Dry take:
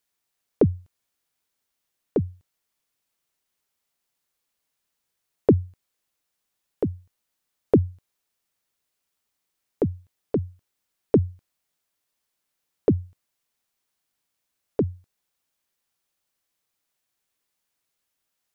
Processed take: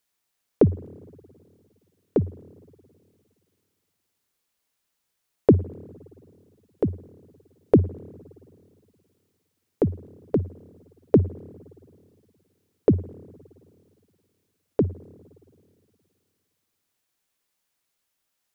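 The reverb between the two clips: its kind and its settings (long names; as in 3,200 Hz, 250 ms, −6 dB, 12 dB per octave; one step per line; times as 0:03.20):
spring reverb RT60 2.4 s, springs 52/57 ms, chirp 35 ms, DRR 19.5 dB
level +1.5 dB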